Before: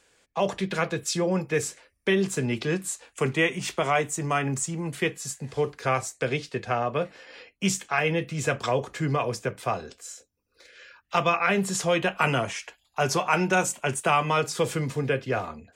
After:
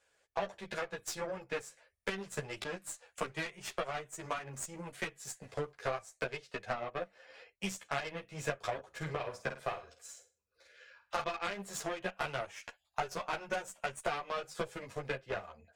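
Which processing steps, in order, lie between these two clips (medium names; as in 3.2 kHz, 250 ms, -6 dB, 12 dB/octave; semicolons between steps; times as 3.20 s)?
single-diode clipper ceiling -19 dBFS; fifteen-band graphic EQ 250 Hz -10 dB, 630 Hz +8 dB, 1.6 kHz +4 dB; compression 4:1, threshold -33 dBFS, peak gain reduction 14.5 dB; Chebyshev shaper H 7 -19 dB, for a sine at -16.5 dBFS; 8.88–11.23 s: flutter echo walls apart 8.7 m, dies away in 0.34 s; three-phase chorus; trim +4 dB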